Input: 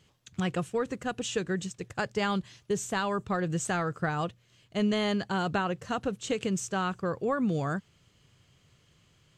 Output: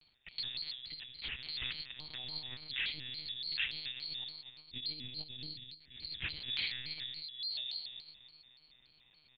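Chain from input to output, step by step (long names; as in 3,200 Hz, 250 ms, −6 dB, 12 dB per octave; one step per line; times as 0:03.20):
neighbouring bands swapped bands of 4,000 Hz
parametric band 500 Hz −14 dB 1 octave
on a send: repeating echo 116 ms, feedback 42%, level −12 dB
on the sum: four-comb reverb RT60 1.6 s, combs from 33 ms, DRR 8 dB
brickwall limiter −25 dBFS, peak gain reduction 9.5 dB
high-pass filter 83 Hz
parametric band 1,100 Hz −11.5 dB 1.1 octaves
0:04.80–0:05.95: noise gate −33 dBFS, range −16 dB
comb filter 1 ms, depth 40%
0:01.03–0:01.49: output level in coarse steps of 20 dB
one-pitch LPC vocoder at 8 kHz 140 Hz
pitch modulation by a square or saw wave square 3.5 Hz, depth 160 cents
level +5.5 dB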